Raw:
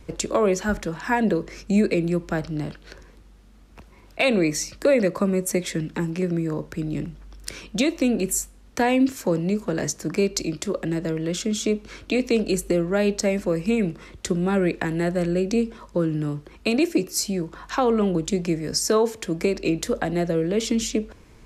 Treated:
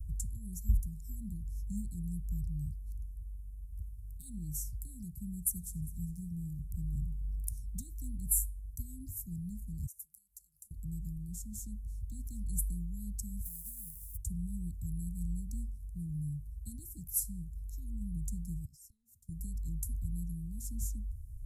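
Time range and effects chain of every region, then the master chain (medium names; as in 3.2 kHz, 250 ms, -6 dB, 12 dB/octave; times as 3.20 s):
5.37–7.62 s: delay 403 ms -21.5 dB + modulated delay 89 ms, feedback 64%, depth 136 cents, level -21 dB
9.86–10.71 s: compression, threshold -34 dBFS + pre-emphasis filter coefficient 0.97
13.43–14.16 s: formants flattened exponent 0.3 + compression 4:1, threshold -35 dBFS
18.65–19.29 s: high-pass 1 kHz 6 dB/octave + peaking EQ 11 kHz -14 dB 1.5 oct + compression 16:1, threshold -37 dBFS
whole clip: inverse Chebyshev band-stop 470–2600 Hz, stop band 80 dB; treble shelf 5.3 kHz -5.5 dB; trim +8 dB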